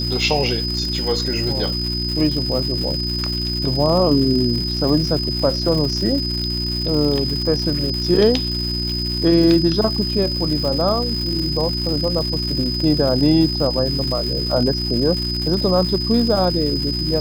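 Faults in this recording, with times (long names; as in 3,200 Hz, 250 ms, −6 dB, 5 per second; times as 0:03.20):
surface crackle 300 per second −25 dBFS
mains hum 60 Hz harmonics 6 −25 dBFS
whistle 5,000 Hz −23 dBFS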